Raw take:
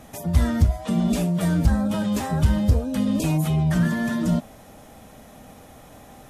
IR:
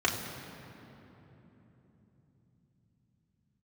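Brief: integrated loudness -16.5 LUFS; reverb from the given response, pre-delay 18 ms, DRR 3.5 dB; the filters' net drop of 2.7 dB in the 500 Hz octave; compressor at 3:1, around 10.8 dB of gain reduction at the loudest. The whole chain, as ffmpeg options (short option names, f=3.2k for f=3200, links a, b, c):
-filter_complex "[0:a]equalizer=f=500:t=o:g=-3.5,acompressor=threshold=-27dB:ratio=3,asplit=2[a][b];[1:a]atrim=start_sample=2205,adelay=18[c];[b][c]afir=irnorm=-1:irlink=0,volume=-15dB[d];[a][d]amix=inputs=2:normalize=0,volume=10.5dB"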